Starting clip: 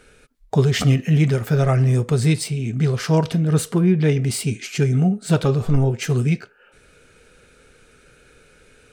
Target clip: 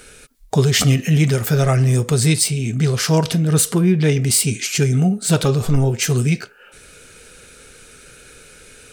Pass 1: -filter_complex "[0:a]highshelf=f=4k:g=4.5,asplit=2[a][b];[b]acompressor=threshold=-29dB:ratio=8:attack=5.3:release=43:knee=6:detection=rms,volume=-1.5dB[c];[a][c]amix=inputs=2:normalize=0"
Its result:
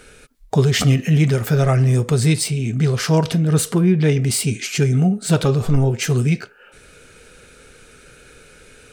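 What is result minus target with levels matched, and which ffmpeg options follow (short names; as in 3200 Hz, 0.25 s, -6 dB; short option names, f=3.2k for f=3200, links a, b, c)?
8000 Hz band -5.0 dB
-filter_complex "[0:a]highshelf=f=4k:g=12.5,asplit=2[a][b];[b]acompressor=threshold=-29dB:ratio=8:attack=5.3:release=43:knee=6:detection=rms,volume=-1.5dB[c];[a][c]amix=inputs=2:normalize=0"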